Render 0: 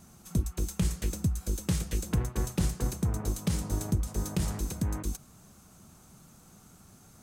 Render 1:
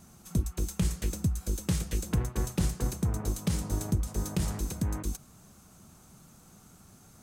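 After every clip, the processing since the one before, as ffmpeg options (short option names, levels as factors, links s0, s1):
-af anull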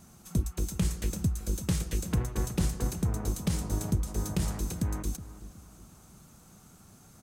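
-filter_complex "[0:a]asplit=2[s0][s1];[s1]adelay=368,lowpass=f=1800:p=1,volume=0.2,asplit=2[s2][s3];[s3]adelay=368,lowpass=f=1800:p=1,volume=0.38,asplit=2[s4][s5];[s5]adelay=368,lowpass=f=1800:p=1,volume=0.38,asplit=2[s6][s7];[s7]adelay=368,lowpass=f=1800:p=1,volume=0.38[s8];[s0][s2][s4][s6][s8]amix=inputs=5:normalize=0"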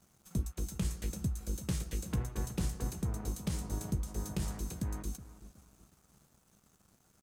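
-filter_complex "[0:a]aeval=exprs='sgn(val(0))*max(abs(val(0))-0.00158,0)':c=same,asplit=2[s0][s1];[s1]adelay=15,volume=0.266[s2];[s0][s2]amix=inputs=2:normalize=0,volume=0.501"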